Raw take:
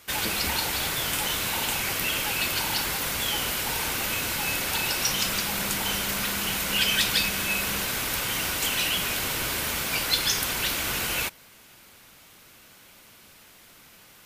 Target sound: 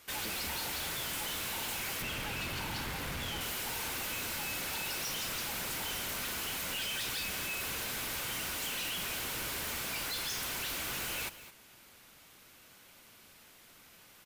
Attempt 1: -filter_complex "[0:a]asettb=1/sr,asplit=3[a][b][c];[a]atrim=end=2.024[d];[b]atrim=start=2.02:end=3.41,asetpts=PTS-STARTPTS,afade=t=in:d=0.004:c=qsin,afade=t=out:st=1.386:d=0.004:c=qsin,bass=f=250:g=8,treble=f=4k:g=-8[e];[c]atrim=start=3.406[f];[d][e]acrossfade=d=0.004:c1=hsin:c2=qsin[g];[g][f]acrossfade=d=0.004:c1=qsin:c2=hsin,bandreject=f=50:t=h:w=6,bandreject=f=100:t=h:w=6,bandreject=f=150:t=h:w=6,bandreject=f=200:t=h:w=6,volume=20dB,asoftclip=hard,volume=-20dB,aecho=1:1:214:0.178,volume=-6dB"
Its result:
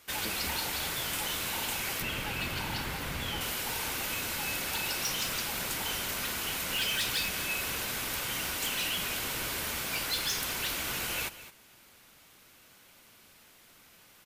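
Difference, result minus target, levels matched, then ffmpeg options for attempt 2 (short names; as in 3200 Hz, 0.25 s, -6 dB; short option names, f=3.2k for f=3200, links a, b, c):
overloaded stage: distortion -11 dB
-filter_complex "[0:a]asettb=1/sr,asplit=3[a][b][c];[a]atrim=end=2.024[d];[b]atrim=start=2.02:end=3.41,asetpts=PTS-STARTPTS,afade=t=in:d=0.004:c=qsin,afade=t=out:st=1.386:d=0.004:c=qsin,bass=f=250:g=8,treble=f=4k:g=-8[e];[c]atrim=start=3.406[f];[d][e]acrossfade=d=0.004:c1=hsin:c2=qsin[g];[g][f]acrossfade=d=0.004:c1=qsin:c2=hsin,bandreject=f=50:t=h:w=6,bandreject=f=100:t=h:w=6,bandreject=f=150:t=h:w=6,bandreject=f=200:t=h:w=6,volume=29dB,asoftclip=hard,volume=-29dB,aecho=1:1:214:0.178,volume=-6dB"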